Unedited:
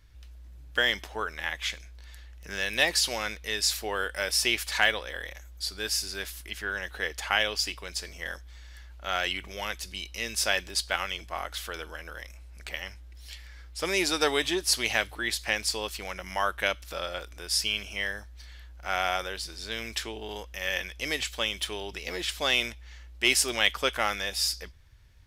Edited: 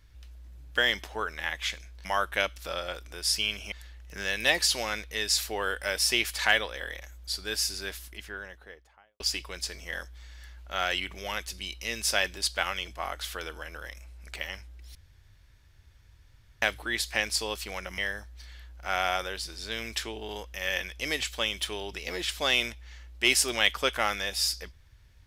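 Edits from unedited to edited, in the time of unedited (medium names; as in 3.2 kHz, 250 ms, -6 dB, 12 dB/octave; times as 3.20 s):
6.02–7.53 s: studio fade out
13.28–14.95 s: room tone
16.31–17.98 s: move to 2.05 s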